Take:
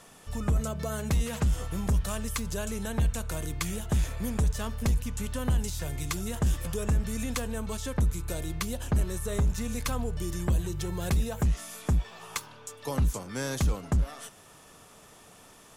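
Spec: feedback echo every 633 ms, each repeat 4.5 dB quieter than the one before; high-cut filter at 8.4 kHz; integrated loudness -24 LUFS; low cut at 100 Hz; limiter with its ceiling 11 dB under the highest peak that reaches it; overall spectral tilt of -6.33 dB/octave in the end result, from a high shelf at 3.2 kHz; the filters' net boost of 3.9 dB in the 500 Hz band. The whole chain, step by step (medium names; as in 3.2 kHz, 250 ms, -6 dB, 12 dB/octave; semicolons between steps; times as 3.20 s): high-pass 100 Hz; low-pass 8.4 kHz; peaking EQ 500 Hz +5 dB; treble shelf 3.2 kHz -7.5 dB; peak limiter -26 dBFS; feedback delay 633 ms, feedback 60%, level -4.5 dB; trim +11 dB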